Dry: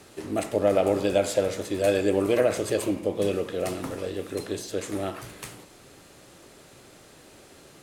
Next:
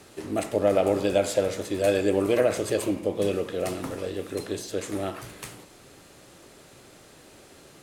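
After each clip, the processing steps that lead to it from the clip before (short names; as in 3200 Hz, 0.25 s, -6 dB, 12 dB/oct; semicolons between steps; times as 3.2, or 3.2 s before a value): nothing audible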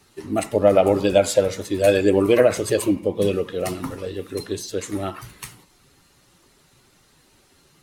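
per-bin expansion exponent 1.5; gain +8.5 dB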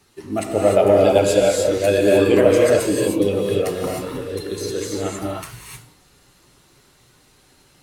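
non-linear reverb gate 0.33 s rising, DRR -2 dB; gain -1.5 dB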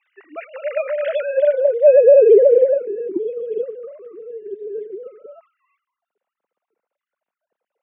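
sine-wave speech; band-pass sweep 2100 Hz -> 200 Hz, 0.86–3.05; maximiser +11 dB; gain -2.5 dB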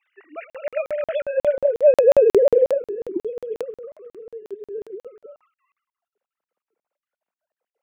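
crackling interface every 0.18 s, samples 2048, zero, from 0.5; gain -3 dB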